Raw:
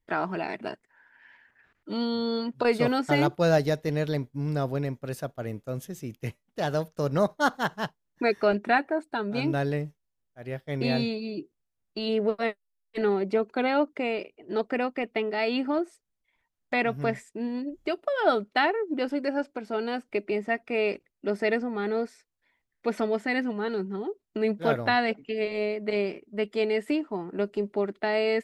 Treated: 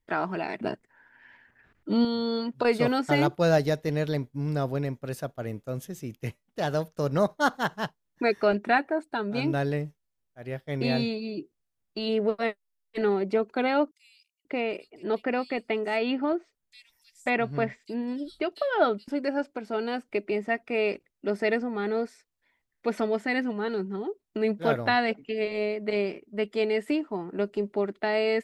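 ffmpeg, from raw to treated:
-filter_complex "[0:a]asettb=1/sr,asplit=3[a][b][c];[a]atrim=end=0.614[d];[b]atrim=start=0.61:end=2.05,asetpts=PTS-STARTPTS,afade=t=in:d=0.004:c=qsin,afade=t=out:st=1.436:d=0.004:c=qsin,lowshelf=f=450:g=9.5[e];[c]atrim=start=2.046[f];[d][e]acrossfade=d=0.004:c1=hsin:c2=qsin[g];[g][f]acrossfade=d=0.004:c1=qsin:c2=hsin,asettb=1/sr,asplit=3[h][i][j];[h]atrim=end=13.914[k];[i]atrim=start=13.91:end=19.08,asetpts=PTS-STARTPTS,afade=t=in:d=0.004:c=qsin,afade=t=out:st=5.166:d=0.004:c=qsin,acrossover=split=4900[l][m];[l]adelay=540[n];[n][m]amix=inputs=2:normalize=0,atrim=end_sample=227997[o];[j]atrim=start=19.076[p];[k][o]acrossfade=d=0.004:c1=hsin:c2=qsin[q];[q][p]acrossfade=d=0.004:c1=qsin:c2=hsin"

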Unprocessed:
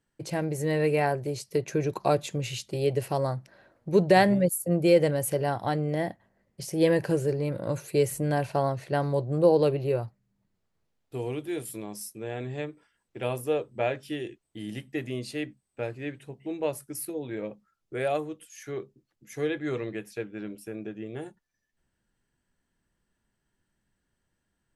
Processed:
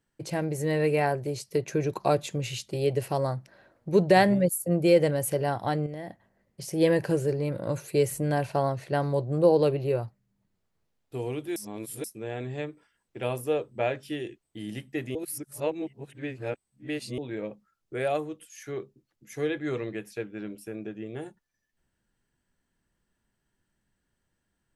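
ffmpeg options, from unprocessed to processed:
-filter_complex "[0:a]asettb=1/sr,asplit=3[a][b][c];[a]atrim=end=5.864[d];[b]atrim=start=5.86:end=6.68,asetpts=PTS-STARTPTS,afade=t=in:d=0.004:c=qsin,afade=t=out:st=0.816:d=0.004:c=qsin,acompressor=threshold=-34dB:ratio=6:attack=3.2:release=140:knee=1:detection=peak[e];[c]atrim=start=6.676[f];[d][e]acrossfade=d=0.004:c1=hsin:c2=qsin[g];[g][f]acrossfade=d=0.004:c1=qsin:c2=hsin,asplit=5[h][i][j][k][l];[h]atrim=end=11.562[m];[i]atrim=start=11.558:end=12.042,asetpts=PTS-STARTPTS,areverse[n];[j]atrim=start=12.038:end=15.152[o];[k]atrim=start=15.148:end=17.182,asetpts=PTS-STARTPTS,areverse[p];[l]atrim=start=17.178[q];[m][n]acrossfade=d=0.004:c1=hsin:c2=hsin[r];[r][o]acrossfade=d=0.004:c1=hsin:c2=hsin[s];[s][p]acrossfade=d=0.004:c1=hsin:c2=hsin[t];[t][q]acrossfade=d=0.004:c1=hsin:c2=hsin"

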